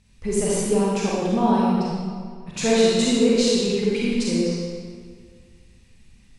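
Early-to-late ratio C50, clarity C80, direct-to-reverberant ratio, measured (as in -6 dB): -3.5 dB, -1.0 dB, -6.5 dB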